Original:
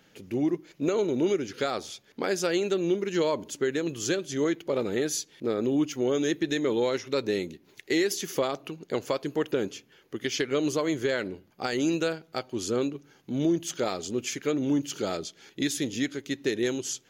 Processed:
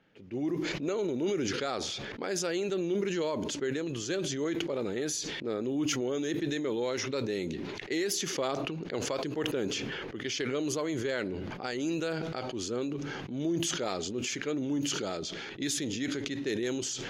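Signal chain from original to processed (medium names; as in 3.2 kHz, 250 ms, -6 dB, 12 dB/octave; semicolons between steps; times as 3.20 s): level-controlled noise filter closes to 2.7 kHz, open at -22 dBFS; decay stretcher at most 20 dB/s; trim -6.5 dB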